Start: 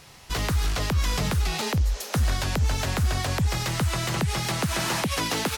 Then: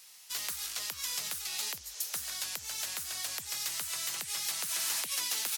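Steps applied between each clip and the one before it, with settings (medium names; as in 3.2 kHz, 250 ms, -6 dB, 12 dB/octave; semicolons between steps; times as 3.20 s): differentiator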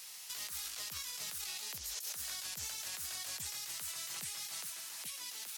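compressor with a negative ratio -42 dBFS, ratio -1; peak limiter -31 dBFS, peak gain reduction 8.5 dB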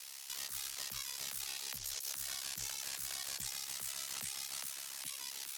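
on a send at -18 dB: reverberation RT60 5.5 s, pre-delay 88 ms; on the sum: ring modulator 34 Hz; trim +3 dB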